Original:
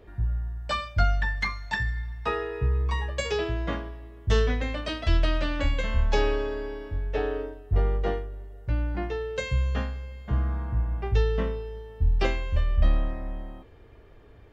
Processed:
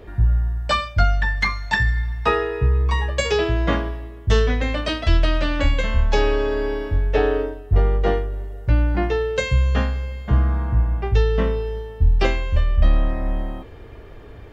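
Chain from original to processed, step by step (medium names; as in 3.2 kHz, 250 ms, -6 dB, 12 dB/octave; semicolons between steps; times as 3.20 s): gain riding within 4 dB 0.5 s; trim +7.5 dB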